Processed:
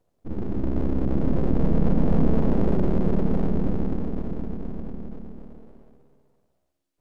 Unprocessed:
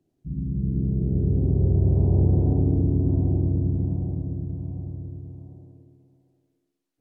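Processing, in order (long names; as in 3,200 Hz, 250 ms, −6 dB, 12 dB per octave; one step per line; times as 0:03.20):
full-wave rectification
level +2.5 dB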